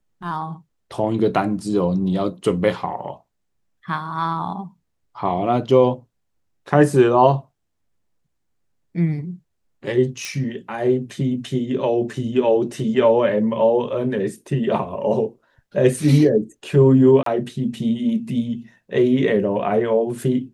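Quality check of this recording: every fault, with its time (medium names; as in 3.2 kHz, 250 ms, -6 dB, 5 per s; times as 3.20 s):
10.25 s: pop -14 dBFS
17.23–17.26 s: dropout 33 ms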